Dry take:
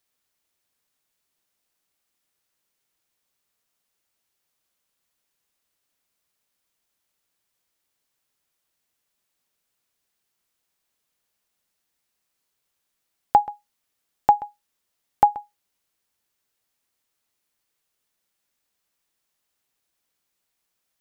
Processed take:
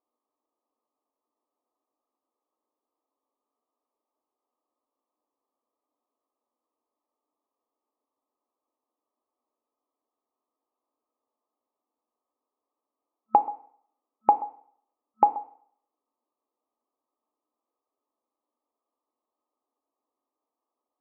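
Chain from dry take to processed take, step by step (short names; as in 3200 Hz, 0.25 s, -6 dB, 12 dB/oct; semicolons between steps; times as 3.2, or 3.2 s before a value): FFT band-pass 220–1300 Hz; compressor 1.5:1, threshold -26 dBFS, peak gain reduction 6 dB; FDN reverb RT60 0.6 s, low-frequency decay 0.95×, high-frequency decay 1×, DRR 10 dB; gain +2 dB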